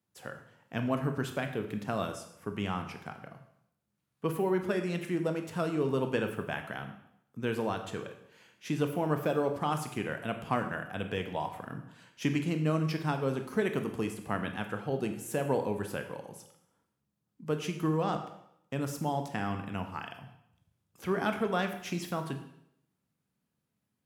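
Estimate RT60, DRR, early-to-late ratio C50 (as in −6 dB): 0.75 s, 6.0 dB, 9.0 dB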